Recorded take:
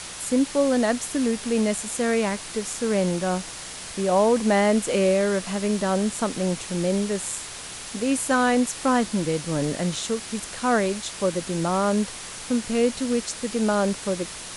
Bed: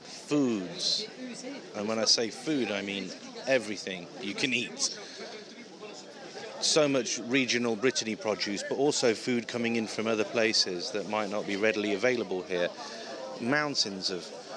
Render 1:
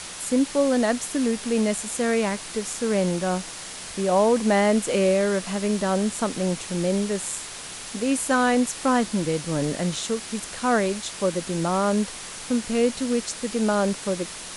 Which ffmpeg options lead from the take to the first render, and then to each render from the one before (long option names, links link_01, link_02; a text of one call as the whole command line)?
ffmpeg -i in.wav -af "bandreject=frequency=60:width_type=h:width=4,bandreject=frequency=120:width_type=h:width=4" out.wav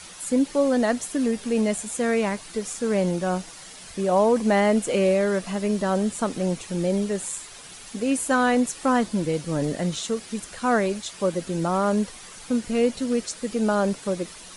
ffmpeg -i in.wav -af "afftdn=noise_reduction=9:noise_floor=-37" out.wav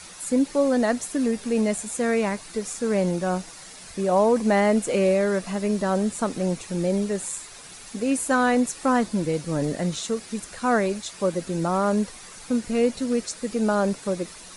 ffmpeg -i in.wav -af "equalizer=frequency=3100:width_type=o:width=0.23:gain=-5" out.wav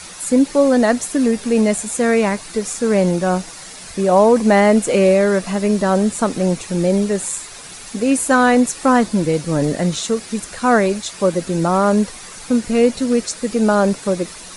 ffmpeg -i in.wav -af "volume=7.5dB" out.wav